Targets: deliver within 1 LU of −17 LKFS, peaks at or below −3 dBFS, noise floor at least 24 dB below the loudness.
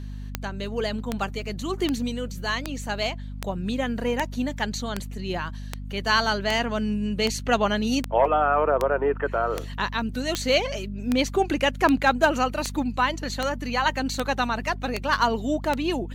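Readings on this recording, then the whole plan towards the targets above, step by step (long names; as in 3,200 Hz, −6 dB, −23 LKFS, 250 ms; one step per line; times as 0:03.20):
number of clicks 21; mains hum 50 Hz; hum harmonics up to 250 Hz; level of the hum −32 dBFS; integrated loudness −25.5 LKFS; sample peak −7.5 dBFS; target loudness −17.0 LKFS
→ click removal
mains-hum notches 50/100/150/200/250 Hz
level +8.5 dB
brickwall limiter −3 dBFS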